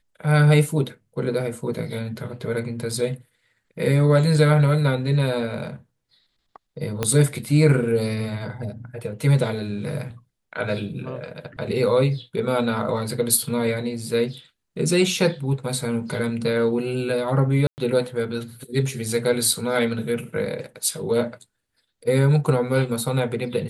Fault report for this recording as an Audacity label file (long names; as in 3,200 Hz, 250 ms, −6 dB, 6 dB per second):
7.030000	7.030000	click −8 dBFS
17.670000	17.780000	drop-out 109 ms